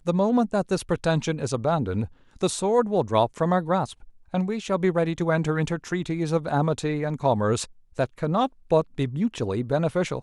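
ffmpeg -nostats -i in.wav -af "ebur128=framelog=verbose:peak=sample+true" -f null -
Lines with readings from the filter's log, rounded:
Integrated loudness:
  I:         -25.1 LUFS
  Threshold: -35.1 LUFS
Loudness range:
  LRA:         1.4 LU
  Threshold: -45.2 LUFS
  LRA low:   -25.8 LUFS
  LRA high:  -24.5 LUFS
Sample peak:
  Peak:       -6.7 dBFS
True peak:
  Peak:       -6.7 dBFS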